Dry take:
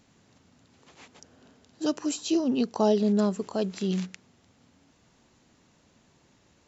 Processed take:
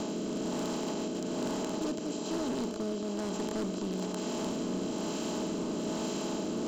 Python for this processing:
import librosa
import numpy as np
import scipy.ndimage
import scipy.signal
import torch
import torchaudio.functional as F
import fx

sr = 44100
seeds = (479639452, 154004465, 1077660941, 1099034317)

y = fx.bin_compress(x, sr, power=0.2)
y = fx.rider(y, sr, range_db=10, speed_s=0.5)
y = fx.rotary(y, sr, hz=1.1)
y = np.clip(y, -10.0 ** (-20.5 / 20.0), 10.0 ** (-20.5 / 20.0))
y = y + 10.0 ** (-10.0 / 20.0) * np.pad(y, (int(838 * sr / 1000.0), 0))[:len(y)]
y = F.gain(torch.from_numpy(y), -9.0).numpy()